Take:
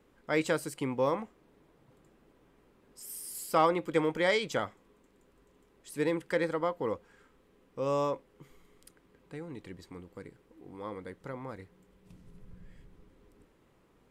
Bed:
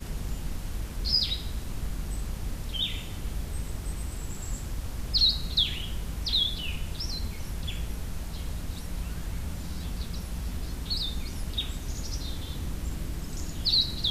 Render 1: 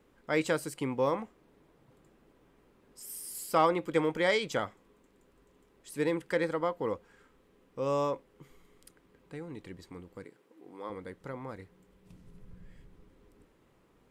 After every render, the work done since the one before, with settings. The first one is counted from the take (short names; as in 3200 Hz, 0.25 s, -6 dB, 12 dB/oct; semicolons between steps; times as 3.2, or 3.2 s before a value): 10.24–10.9 HPF 260 Hz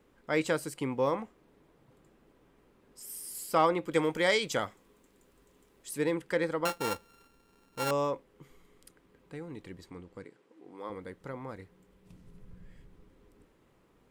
3.92–5.98 high shelf 4100 Hz +8 dB; 6.65–7.91 sample sorter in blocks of 32 samples; 9.9–10.78 LPF 8500 Hz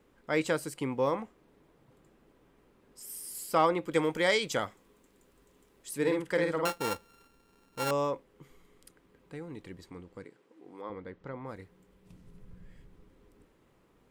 5.97–6.68 doubler 50 ms -4 dB; 10.81–11.46 air absorption 160 m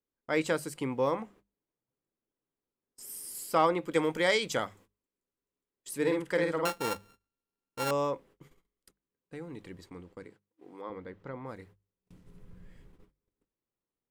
gate -55 dBFS, range -29 dB; notches 50/100/150/200 Hz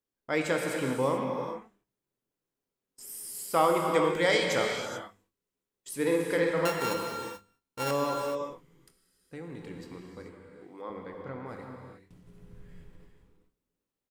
doubler 24 ms -13 dB; non-linear reverb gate 0.46 s flat, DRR 1.5 dB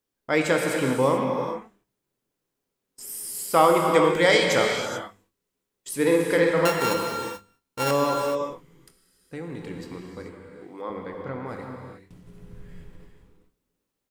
gain +6.5 dB